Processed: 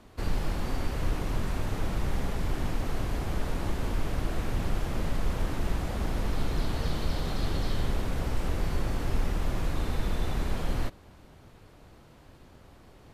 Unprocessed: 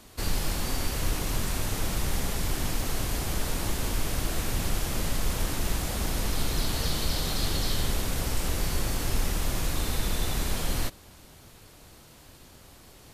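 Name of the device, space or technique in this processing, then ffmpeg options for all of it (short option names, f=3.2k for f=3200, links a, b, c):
through cloth: -af "highshelf=f=3.6k:g=-17.5"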